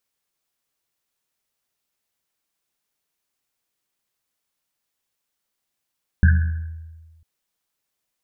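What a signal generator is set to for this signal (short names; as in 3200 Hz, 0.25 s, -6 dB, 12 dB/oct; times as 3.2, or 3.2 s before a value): Risset drum length 1.00 s, pitch 81 Hz, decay 1.45 s, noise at 1600 Hz, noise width 220 Hz, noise 15%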